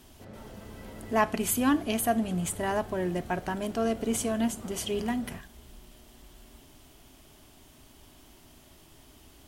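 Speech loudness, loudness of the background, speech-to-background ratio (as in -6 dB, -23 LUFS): -29.5 LUFS, -45.5 LUFS, 16.0 dB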